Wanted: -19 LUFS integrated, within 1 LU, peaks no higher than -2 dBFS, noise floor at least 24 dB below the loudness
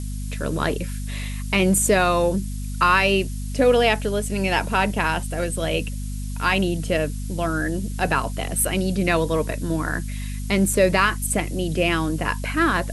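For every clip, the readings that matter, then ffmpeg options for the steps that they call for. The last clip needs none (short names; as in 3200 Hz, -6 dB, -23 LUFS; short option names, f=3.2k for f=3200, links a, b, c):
hum 50 Hz; harmonics up to 250 Hz; hum level -26 dBFS; noise floor -29 dBFS; noise floor target -46 dBFS; loudness -22.0 LUFS; peak -3.5 dBFS; loudness target -19.0 LUFS
-> -af "bandreject=f=50:t=h:w=4,bandreject=f=100:t=h:w=4,bandreject=f=150:t=h:w=4,bandreject=f=200:t=h:w=4,bandreject=f=250:t=h:w=4"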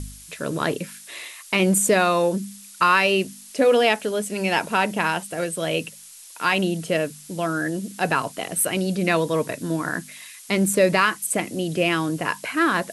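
hum none; noise floor -44 dBFS; noise floor target -46 dBFS
-> -af "afftdn=nr=6:nf=-44"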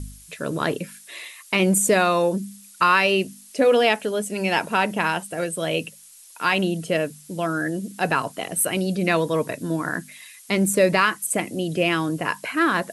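noise floor -48 dBFS; loudness -22.5 LUFS; peak -4.5 dBFS; loudness target -19.0 LUFS
-> -af "volume=3.5dB,alimiter=limit=-2dB:level=0:latency=1"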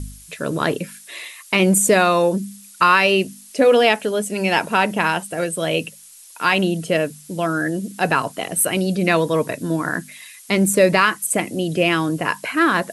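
loudness -19.0 LUFS; peak -2.0 dBFS; noise floor -44 dBFS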